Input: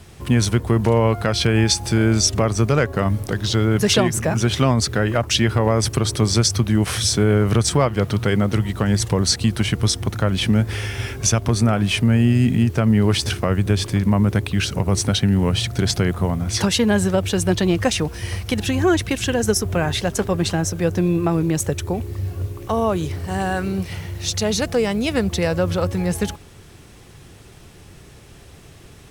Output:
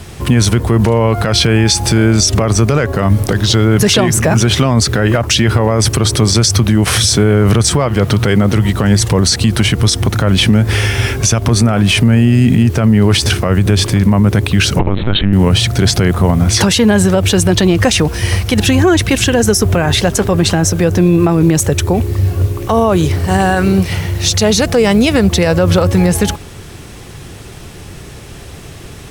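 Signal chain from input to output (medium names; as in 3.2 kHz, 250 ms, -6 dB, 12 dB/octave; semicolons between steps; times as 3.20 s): 14.79–15.33 s: LPC vocoder at 8 kHz pitch kept; loudness maximiser +13.5 dB; trim -1 dB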